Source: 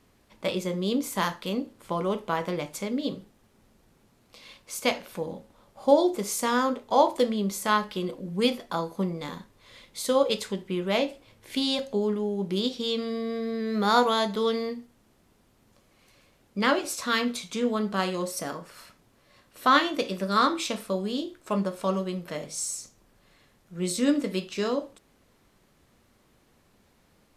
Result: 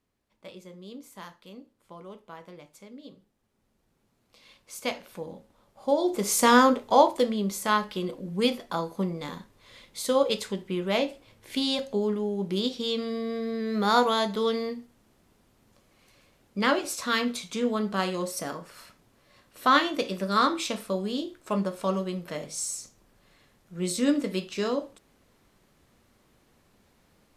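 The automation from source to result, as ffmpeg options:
-af "volume=7.5dB,afade=t=in:st=3.15:d=1.79:silence=0.266073,afade=t=in:st=5.99:d=0.52:silence=0.237137,afade=t=out:st=6.51:d=0.62:silence=0.398107"

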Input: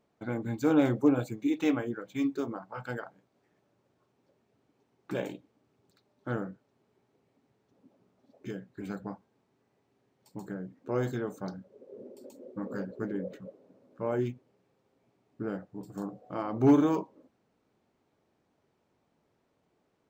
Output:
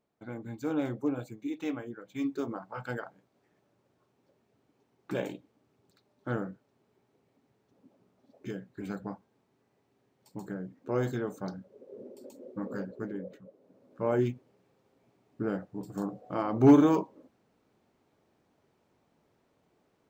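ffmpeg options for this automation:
-af "volume=11dB,afade=t=in:st=1.97:d=0.58:silence=0.421697,afade=t=out:st=12.63:d=0.85:silence=0.398107,afade=t=in:st=13.48:d=0.61:silence=0.298538"

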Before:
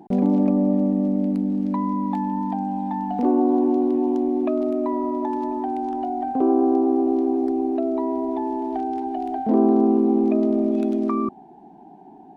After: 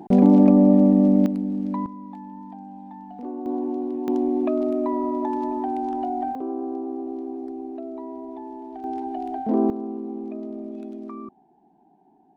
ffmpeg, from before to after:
-af "asetnsamples=n=441:p=0,asendcmd='1.26 volume volume -3dB;1.86 volume volume -14dB;3.46 volume volume -7.5dB;4.08 volume volume -0.5dB;6.35 volume volume -11dB;8.84 volume volume -3dB;9.7 volume volume -13.5dB',volume=5dB"

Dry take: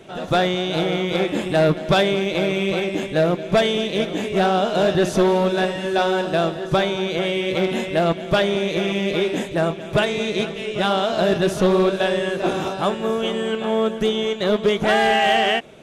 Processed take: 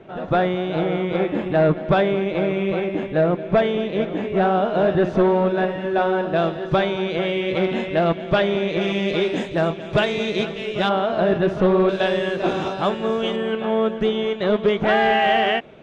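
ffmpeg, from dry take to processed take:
-af "asetnsamples=n=441:p=0,asendcmd='6.36 lowpass f 3100;8.81 lowpass f 5000;10.89 lowpass f 2100;11.89 lowpass f 4700;13.36 lowpass f 2800',lowpass=1.9k"

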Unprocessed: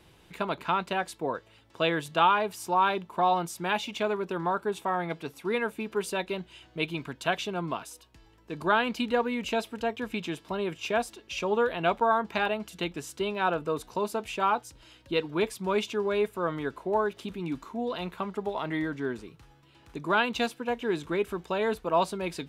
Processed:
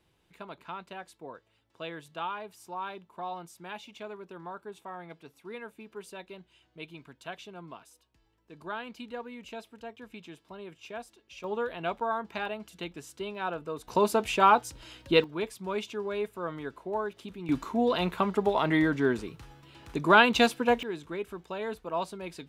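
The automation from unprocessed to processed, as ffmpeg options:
-af "asetnsamples=n=441:p=0,asendcmd='11.44 volume volume -6.5dB;13.88 volume volume 5.5dB;15.24 volume volume -5.5dB;17.49 volume volume 6dB;20.83 volume volume -7dB',volume=-13dB"

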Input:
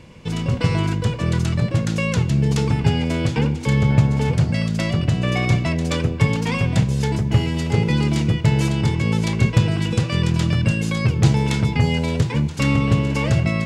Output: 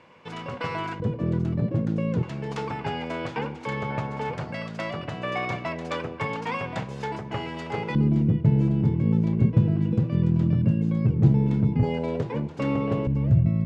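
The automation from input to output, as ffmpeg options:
-af "asetnsamples=n=441:p=0,asendcmd='1 bandpass f 290;2.23 bandpass f 990;7.95 bandpass f 210;11.83 bandpass f 520;13.07 bandpass f 120',bandpass=f=1.1k:t=q:w=0.98:csg=0"

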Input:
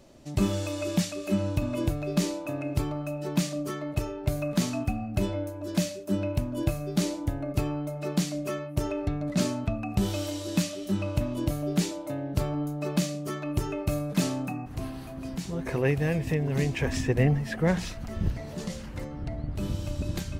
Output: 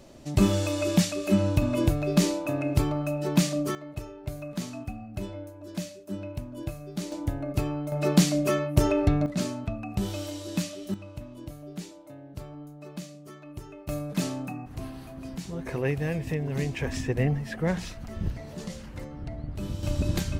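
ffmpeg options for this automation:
-af "asetnsamples=n=441:p=0,asendcmd='3.75 volume volume -7.5dB;7.12 volume volume 0dB;7.92 volume volume 7dB;9.26 volume volume -3dB;10.94 volume volume -12.5dB;13.89 volume volume -2.5dB;19.83 volume volume 4.5dB',volume=4dB"

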